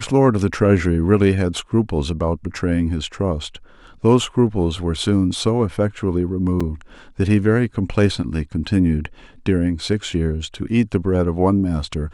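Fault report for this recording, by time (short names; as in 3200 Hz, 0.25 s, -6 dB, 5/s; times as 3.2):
6.6–6.61 gap 5 ms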